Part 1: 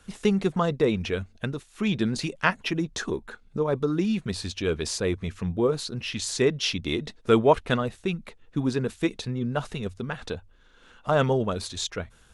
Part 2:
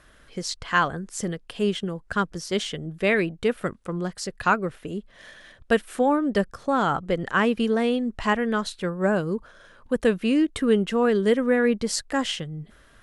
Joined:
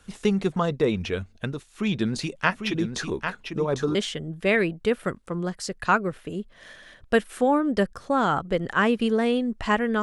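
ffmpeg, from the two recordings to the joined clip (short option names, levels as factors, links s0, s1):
-filter_complex "[0:a]asplit=3[s0][s1][s2];[s0]afade=t=out:st=2.51:d=0.02[s3];[s1]aecho=1:1:798:0.447,afade=t=in:st=2.51:d=0.02,afade=t=out:st=3.95:d=0.02[s4];[s2]afade=t=in:st=3.95:d=0.02[s5];[s3][s4][s5]amix=inputs=3:normalize=0,apad=whole_dur=10.02,atrim=end=10.02,atrim=end=3.952[s6];[1:a]atrim=start=2.528:end=8.6[s7];[s6][s7]acrossfade=d=0.004:c1=hsin:c2=hsin"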